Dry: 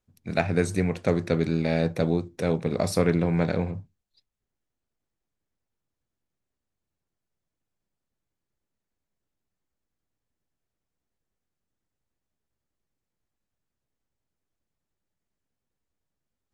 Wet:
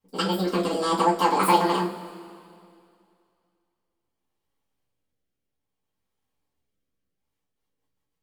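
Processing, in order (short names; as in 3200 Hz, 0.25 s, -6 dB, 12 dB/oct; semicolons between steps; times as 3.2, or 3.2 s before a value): wide varispeed 2.01×; rotary speaker horn 0.6 Hz, later 6.7 Hz, at 7.01; two-slope reverb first 0.26 s, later 2.4 s, from -21 dB, DRR -9 dB; gain -3.5 dB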